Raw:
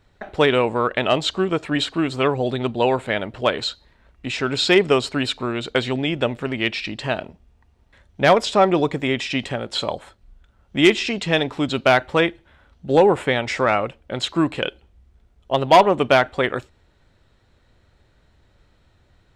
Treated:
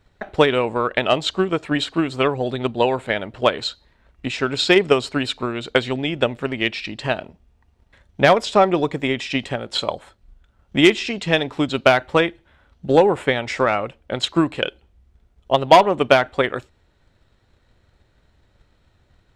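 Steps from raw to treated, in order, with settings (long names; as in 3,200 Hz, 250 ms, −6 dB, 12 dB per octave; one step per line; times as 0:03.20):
transient designer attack +6 dB, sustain 0 dB
level −2 dB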